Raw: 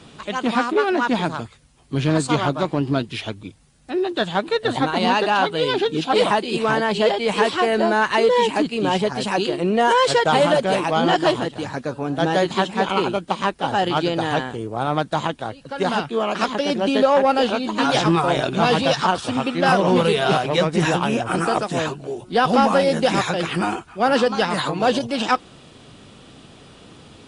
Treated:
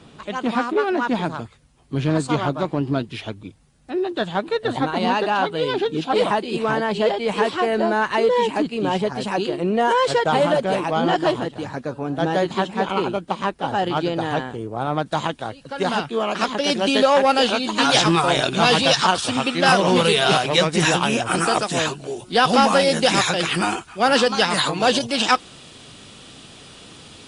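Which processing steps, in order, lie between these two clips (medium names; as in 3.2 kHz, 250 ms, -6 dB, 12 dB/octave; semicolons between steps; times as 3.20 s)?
treble shelf 2 kHz -4.5 dB, from 15.06 s +2.5 dB, from 16.64 s +10 dB; trim -1 dB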